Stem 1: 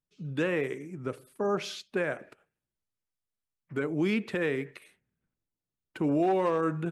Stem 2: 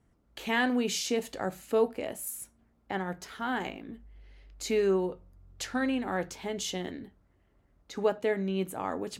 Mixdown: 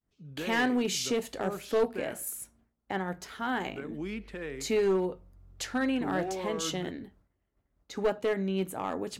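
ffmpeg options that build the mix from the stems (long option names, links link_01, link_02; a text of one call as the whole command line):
ffmpeg -i stem1.wav -i stem2.wav -filter_complex "[0:a]volume=-9.5dB[link_01];[1:a]agate=range=-33dB:threshold=-58dB:ratio=3:detection=peak,aeval=exprs='clip(val(0),-1,0.0708)':channel_layout=same,volume=0.5dB[link_02];[link_01][link_02]amix=inputs=2:normalize=0" out.wav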